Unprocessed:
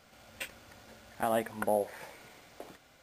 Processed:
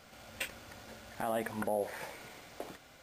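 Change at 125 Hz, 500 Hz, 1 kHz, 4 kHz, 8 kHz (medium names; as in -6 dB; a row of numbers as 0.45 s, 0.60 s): 0.0 dB, -3.5 dB, -4.0 dB, +1.0 dB, -0.5 dB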